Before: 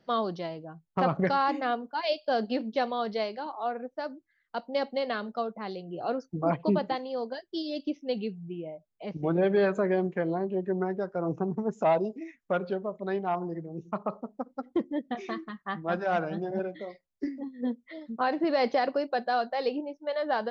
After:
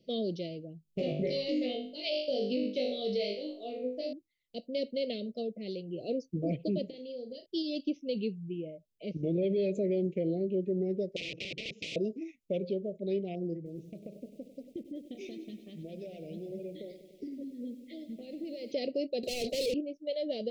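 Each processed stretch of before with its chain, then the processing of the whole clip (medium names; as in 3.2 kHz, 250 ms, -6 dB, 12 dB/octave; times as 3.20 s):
0.83–4.13 s: peaking EQ 110 Hz -7 dB 1.8 oct + flutter echo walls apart 3.4 m, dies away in 0.45 s
6.89–7.46 s: compression 12:1, threshold -37 dBFS + flutter echo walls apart 6.2 m, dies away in 0.25 s
11.16–11.96 s: integer overflow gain 30 dB + cabinet simulation 230–2900 Hz, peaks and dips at 240 Hz -10 dB, 390 Hz -8 dB, 620 Hz -8 dB, 930 Hz -10 dB, 1.6 kHz +10 dB, 2.4 kHz +8 dB + spectrum-flattening compressor 2:1
13.56–18.72 s: compression, threshold -37 dBFS + bit-crushed delay 98 ms, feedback 80%, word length 10-bit, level -13 dB
19.23–19.74 s: high-pass 440 Hz + high-order bell 1.5 kHz -9 dB 2.8 oct + overdrive pedal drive 38 dB, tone 4.3 kHz, clips at -22 dBFS
whole clip: inverse Chebyshev band-stop 810–1700 Hz, stop band 40 dB; peak limiter -23.5 dBFS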